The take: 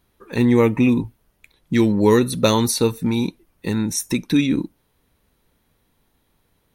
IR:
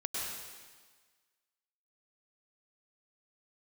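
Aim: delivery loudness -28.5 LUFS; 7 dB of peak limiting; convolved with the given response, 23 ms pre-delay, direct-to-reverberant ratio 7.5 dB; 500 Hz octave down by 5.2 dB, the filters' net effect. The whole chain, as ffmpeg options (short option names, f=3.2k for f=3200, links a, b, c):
-filter_complex "[0:a]equalizer=f=500:t=o:g=-6.5,alimiter=limit=-12dB:level=0:latency=1,asplit=2[a][b];[1:a]atrim=start_sample=2205,adelay=23[c];[b][c]afir=irnorm=-1:irlink=0,volume=-11.5dB[d];[a][d]amix=inputs=2:normalize=0,volume=-5.5dB"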